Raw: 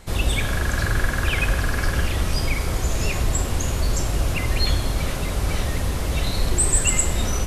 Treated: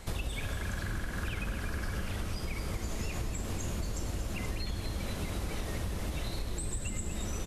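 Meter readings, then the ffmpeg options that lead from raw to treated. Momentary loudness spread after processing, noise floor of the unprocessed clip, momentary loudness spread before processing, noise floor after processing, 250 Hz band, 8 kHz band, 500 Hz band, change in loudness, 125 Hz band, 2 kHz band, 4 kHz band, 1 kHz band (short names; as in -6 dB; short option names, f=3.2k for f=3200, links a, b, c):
1 LU, -26 dBFS, 6 LU, -38 dBFS, -10.0 dB, -17.5 dB, -12.5 dB, -14.0 dB, -12.5 dB, -14.5 dB, -14.5 dB, -13.5 dB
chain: -filter_complex "[0:a]acrossover=split=390[a][b];[b]acompressor=threshold=-24dB:ratio=6[c];[a][c]amix=inputs=2:normalize=0,asplit=2[d][e];[e]asplit=8[f][g][h][i][j][k][l][m];[f]adelay=239,afreqshift=-120,volume=-8dB[n];[g]adelay=478,afreqshift=-240,volume=-12.4dB[o];[h]adelay=717,afreqshift=-360,volume=-16.9dB[p];[i]adelay=956,afreqshift=-480,volume=-21.3dB[q];[j]adelay=1195,afreqshift=-600,volume=-25.7dB[r];[k]adelay=1434,afreqshift=-720,volume=-30.2dB[s];[l]adelay=1673,afreqshift=-840,volume=-34.6dB[t];[m]adelay=1912,afreqshift=-960,volume=-39.1dB[u];[n][o][p][q][r][s][t][u]amix=inputs=8:normalize=0[v];[d][v]amix=inputs=2:normalize=0,acompressor=threshold=-29dB:ratio=12,volume=-2dB"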